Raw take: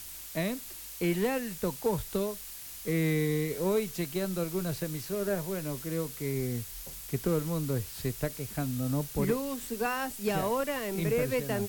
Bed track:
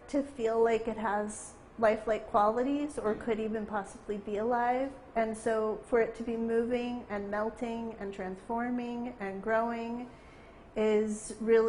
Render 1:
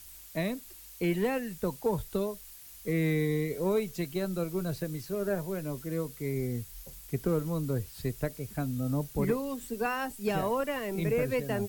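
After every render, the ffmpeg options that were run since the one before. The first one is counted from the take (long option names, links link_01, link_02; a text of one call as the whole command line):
ffmpeg -i in.wav -af "afftdn=noise_reduction=8:noise_floor=-44" out.wav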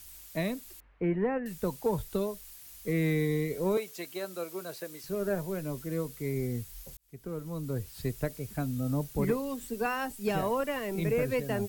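ffmpeg -i in.wav -filter_complex "[0:a]asettb=1/sr,asplit=3[link_01][link_02][link_03];[link_01]atrim=end=0.804[link_04];[link_02]atrim=start=0.8:end=1.46,asetpts=PTS-STARTPTS,afade=type=in:duration=0.004:curve=qsin,afade=type=out:start_time=0.656:duration=0.004:curve=qsin,lowpass=frequency=1900:width=0.5412,lowpass=frequency=1900:width=1.3066[link_05];[link_03]atrim=start=1.456[link_06];[link_04][link_05]acrossfade=duration=0.004:curve1=hsin:curve2=qsin[link_07];[link_07][link_06]acrossfade=duration=0.004:curve1=qsin:curve2=hsin,asettb=1/sr,asplit=3[link_08][link_09][link_10];[link_08]atrim=end=3.774[link_11];[link_09]atrim=start=3.77:end=5.04,asetpts=PTS-STARTPTS,afade=type=in:duration=0.004:curve=qsin,afade=type=out:start_time=1.266:duration=0.004:curve=qsin,highpass=450[link_12];[link_10]atrim=start=5.036[link_13];[link_11][link_12]acrossfade=duration=0.004:curve1=hsin:curve2=qsin[link_14];[link_14][link_13]acrossfade=duration=0.004:curve1=qsin:curve2=hsin,asplit=2[link_15][link_16];[link_15]atrim=end=6.97,asetpts=PTS-STARTPTS,afade=type=out:start_time=6.966:duration=0.004:curve=hsin[link_17];[link_16]atrim=start=6.97,asetpts=PTS-STARTPTS,afade=type=in:duration=1.03[link_18];[link_17][link_18]concat=n=2:v=0:a=1" out.wav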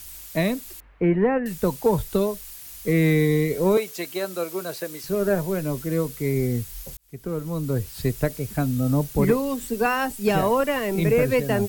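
ffmpeg -i in.wav -af "volume=9dB" out.wav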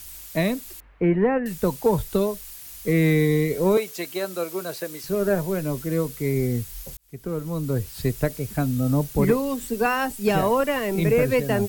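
ffmpeg -i in.wav -af anull out.wav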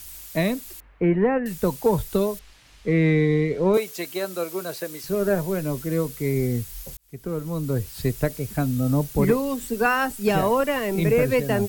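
ffmpeg -i in.wav -filter_complex "[0:a]asettb=1/sr,asplit=3[link_01][link_02][link_03];[link_01]atrim=end=2.394[link_04];[link_02]atrim=start=2.39:end=3.74,asetpts=PTS-STARTPTS,afade=type=in:duration=0.004:curve=qsin,afade=type=out:start_time=1.346:duration=0.004:curve=qsin,lowpass=3500[link_05];[link_03]atrim=start=3.736[link_06];[link_04][link_05]acrossfade=duration=0.004:curve1=hsin:curve2=qsin[link_07];[link_07][link_06]acrossfade=duration=0.004:curve1=qsin:curve2=hsin,asettb=1/sr,asplit=3[link_08][link_09][link_10];[link_08]atrim=end=9.764[link_11];[link_09]atrim=start=9.76:end=10.23,asetpts=PTS-STARTPTS,afade=type=in:duration=0.004:curve=qsin,afade=type=out:start_time=0.466:duration=0.004:curve=qsin,equalizer=frequency=1400:width_type=o:width=0.36:gain=6[link_12];[link_10]atrim=start=10.226[link_13];[link_11][link_12]acrossfade=duration=0.004:curve1=hsin:curve2=qsin[link_14];[link_14][link_13]acrossfade=duration=0.004:curve1=qsin:curve2=hsin" out.wav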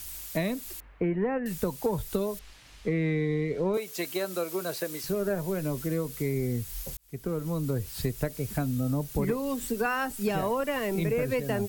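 ffmpeg -i in.wav -af "acompressor=threshold=-27dB:ratio=3" out.wav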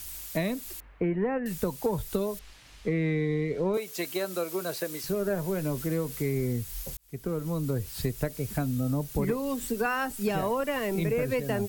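ffmpeg -i in.wav -filter_complex "[0:a]asettb=1/sr,asplit=3[link_01][link_02][link_03];[link_01]atrim=end=5.324[link_04];[link_02]atrim=start=5.32:end=6.53,asetpts=PTS-STARTPTS,afade=type=in:duration=0.004:curve=qsin,afade=type=out:start_time=1.206:duration=0.004:curve=qsin,aeval=exprs='val(0)+0.5*0.00531*sgn(val(0))':channel_layout=same[link_05];[link_03]atrim=start=6.526[link_06];[link_04][link_05]acrossfade=duration=0.004:curve1=hsin:curve2=qsin[link_07];[link_07][link_06]acrossfade=duration=0.004:curve1=qsin:curve2=hsin" out.wav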